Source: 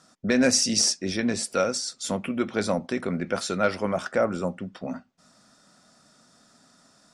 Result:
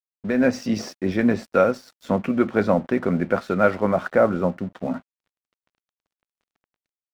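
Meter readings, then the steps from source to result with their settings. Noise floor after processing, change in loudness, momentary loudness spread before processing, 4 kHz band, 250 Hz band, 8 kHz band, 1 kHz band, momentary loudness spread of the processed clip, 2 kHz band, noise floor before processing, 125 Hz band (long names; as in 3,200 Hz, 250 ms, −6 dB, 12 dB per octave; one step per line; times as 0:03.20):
below −85 dBFS, +3.0 dB, 13 LU, below −10 dB, +5.0 dB, below −15 dB, +5.5 dB, 9 LU, +2.5 dB, −60 dBFS, +6.0 dB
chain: low-pass filter 1,800 Hz 12 dB per octave
automatic gain control gain up to 8.5 dB
dead-zone distortion −44 dBFS
level −1 dB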